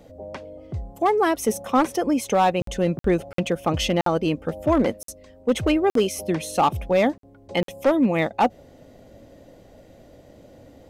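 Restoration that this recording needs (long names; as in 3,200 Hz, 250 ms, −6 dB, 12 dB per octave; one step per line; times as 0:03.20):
clipped peaks rebuilt −12 dBFS
repair the gap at 0:02.62/0:02.99/0:03.33/0:04.01/0:05.03/0:05.90/0:07.18/0:07.63, 53 ms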